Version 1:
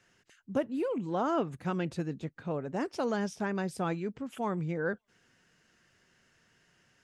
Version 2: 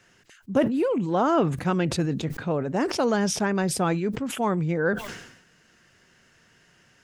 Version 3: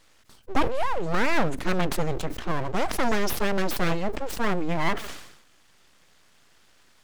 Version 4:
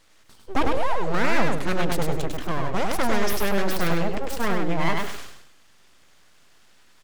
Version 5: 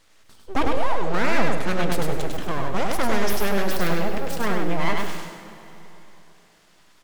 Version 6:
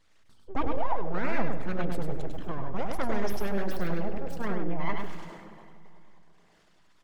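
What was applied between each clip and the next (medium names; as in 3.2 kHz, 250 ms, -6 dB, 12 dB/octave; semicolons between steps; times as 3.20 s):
decay stretcher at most 69 dB/s; trim +8 dB
full-wave rectifier; trim +2 dB
feedback delay 101 ms, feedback 23%, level -3.5 dB
plate-style reverb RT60 3.4 s, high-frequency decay 0.85×, DRR 9 dB
resonances exaggerated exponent 1.5; trim -5 dB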